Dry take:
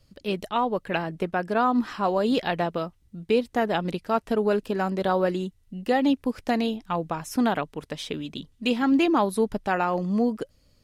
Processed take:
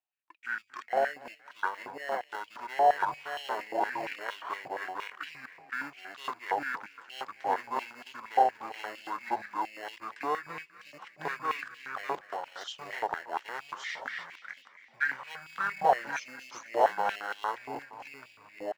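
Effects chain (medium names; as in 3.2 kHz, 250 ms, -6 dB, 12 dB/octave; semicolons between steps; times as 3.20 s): chunks repeated in reverse 450 ms, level 0 dB; gate -45 dBFS, range -25 dB; on a send: frequency-shifting echo 141 ms, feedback 62%, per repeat +31 Hz, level -18 dB; on the sum: speed mistake 78 rpm record played at 45 rpm; dynamic bell 2.4 kHz, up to -6 dB, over -49 dBFS, Q 2; in parallel at -11 dB: sample-rate reducer 2.4 kHz, jitter 0%; on the sum: treble shelf 5.4 kHz -10 dB; step-sequenced high-pass 8.6 Hz 780–3000 Hz; trim -6 dB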